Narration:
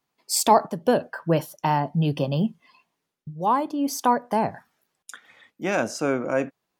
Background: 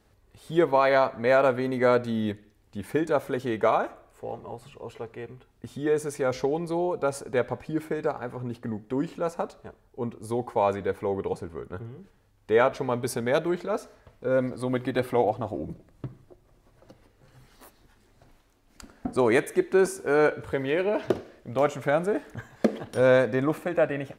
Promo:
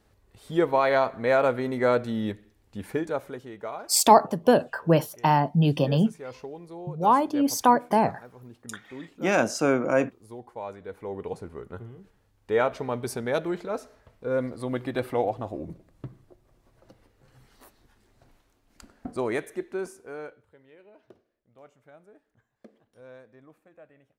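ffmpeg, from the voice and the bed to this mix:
ffmpeg -i stem1.wav -i stem2.wav -filter_complex "[0:a]adelay=3600,volume=1.5dB[link_01];[1:a]volume=9.5dB,afade=type=out:start_time=2.82:duration=0.67:silence=0.251189,afade=type=in:start_time=10.81:duration=0.65:silence=0.298538,afade=type=out:start_time=18.51:duration=1.96:silence=0.0501187[link_02];[link_01][link_02]amix=inputs=2:normalize=0" out.wav

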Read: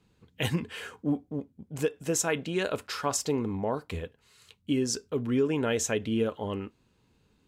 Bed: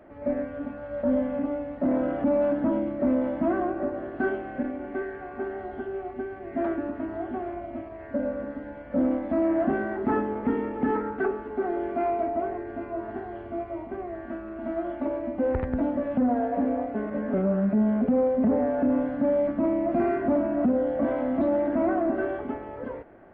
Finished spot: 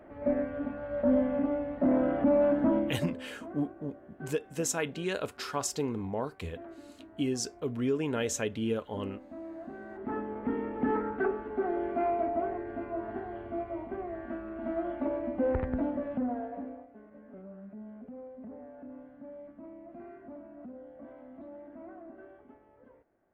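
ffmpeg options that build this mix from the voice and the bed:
ffmpeg -i stem1.wav -i stem2.wav -filter_complex "[0:a]adelay=2500,volume=-3.5dB[link_01];[1:a]volume=15dB,afade=type=out:start_time=2.77:duration=0.38:silence=0.125893,afade=type=in:start_time=9.72:duration=1.26:silence=0.158489,afade=type=out:start_time=15.54:duration=1.33:silence=0.1[link_02];[link_01][link_02]amix=inputs=2:normalize=0" out.wav

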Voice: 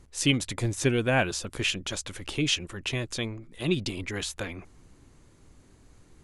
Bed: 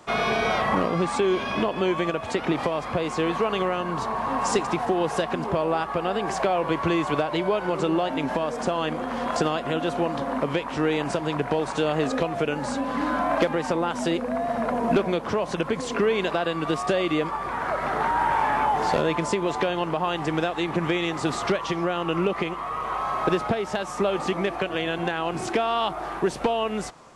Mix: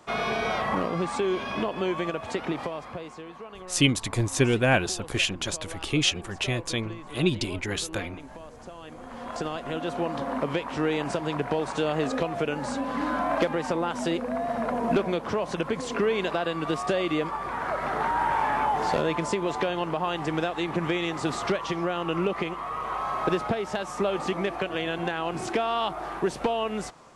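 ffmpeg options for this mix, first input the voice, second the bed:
ffmpeg -i stem1.wav -i stem2.wav -filter_complex "[0:a]adelay=3550,volume=2.5dB[link_01];[1:a]volume=11.5dB,afade=type=out:start_time=2.34:duration=0.9:silence=0.199526,afade=type=in:start_time=8.82:duration=1.42:silence=0.16788[link_02];[link_01][link_02]amix=inputs=2:normalize=0" out.wav

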